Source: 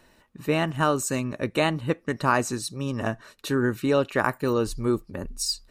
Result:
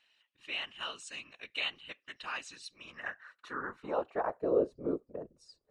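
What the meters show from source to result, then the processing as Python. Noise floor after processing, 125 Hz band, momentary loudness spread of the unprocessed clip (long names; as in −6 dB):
−81 dBFS, −25.5 dB, 7 LU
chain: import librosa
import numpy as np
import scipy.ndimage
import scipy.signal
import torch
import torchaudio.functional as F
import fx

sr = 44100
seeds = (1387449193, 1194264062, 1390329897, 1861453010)

y = scipy.signal.sosfilt(scipy.signal.ellip(4, 1.0, 40, 11000.0, 'lowpass', fs=sr, output='sos'), x)
y = fx.filter_sweep_bandpass(y, sr, from_hz=3000.0, to_hz=470.0, start_s=2.55, end_s=4.61, q=3.4)
y = fx.whisperise(y, sr, seeds[0])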